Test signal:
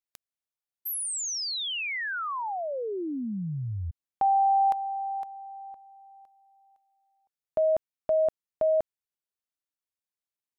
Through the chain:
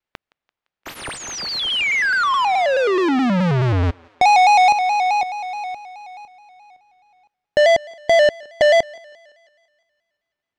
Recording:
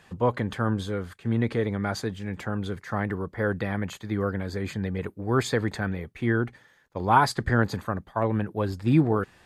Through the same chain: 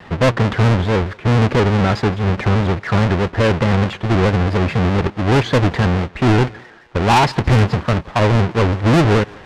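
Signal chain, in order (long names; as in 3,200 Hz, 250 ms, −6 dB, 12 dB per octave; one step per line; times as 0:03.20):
each half-wave held at its own peak
low-pass filter 2,800 Hz 12 dB per octave
in parallel at −1.5 dB: downward compressor, threshold −27 dBFS
on the sum: soft clipping −16.5 dBFS
on a send: feedback echo with a high-pass in the loop 170 ms, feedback 57%, high-pass 370 Hz, level −23 dB
on the sum: pitch modulation by a square or saw wave square 4.7 Hz, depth 100 cents
level +7.5 dB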